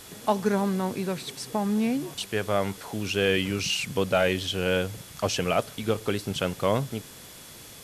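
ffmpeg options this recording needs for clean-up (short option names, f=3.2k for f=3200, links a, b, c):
-af "bandreject=f=3.4k:w=30,afwtdn=0.0056"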